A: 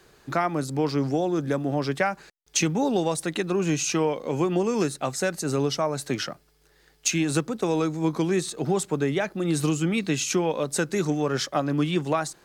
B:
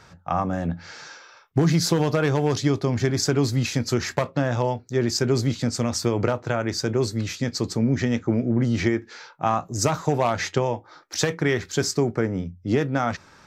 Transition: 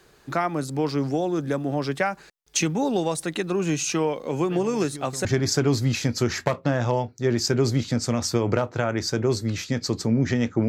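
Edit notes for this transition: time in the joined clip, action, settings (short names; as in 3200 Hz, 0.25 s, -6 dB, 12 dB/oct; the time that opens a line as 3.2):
A
4.5 add B from 2.21 s 0.75 s -17.5 dB
5.25 switch to B from 2.96 s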